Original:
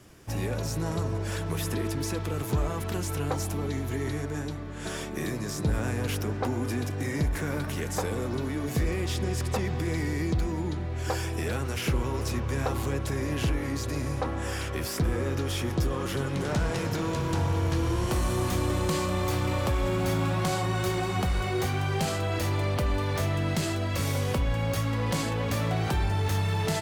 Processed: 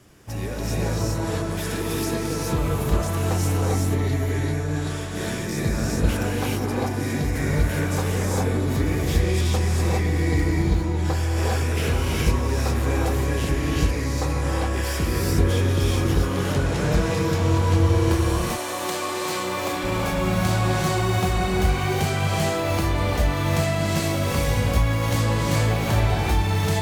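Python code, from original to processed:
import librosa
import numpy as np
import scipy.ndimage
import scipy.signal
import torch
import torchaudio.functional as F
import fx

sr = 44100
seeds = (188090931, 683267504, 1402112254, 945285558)

y = fx.highpass(x, sr, hz=fx.line((18.14, 570.0), (19.83, 260.0)), slope=12, at=(18.14, 19.83), fade=0.02)
y = fx.rev_gated(y, sr, seeds[0], gate_ms=440, shape='rising', drr_db=-4.5)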